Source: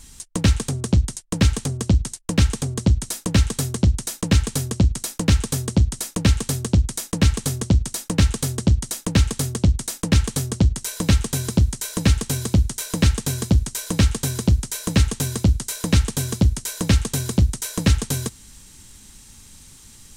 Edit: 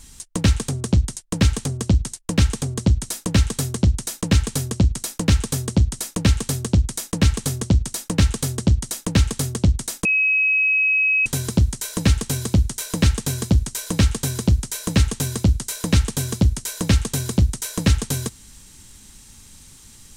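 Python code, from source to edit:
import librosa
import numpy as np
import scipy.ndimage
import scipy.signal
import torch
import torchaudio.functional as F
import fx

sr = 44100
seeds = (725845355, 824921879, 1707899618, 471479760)

y = fx.edit(x, sr, fx.bleep(start_s=10.05, length_s=1.21, hz=2550.0, db=-15.0), tone=tone)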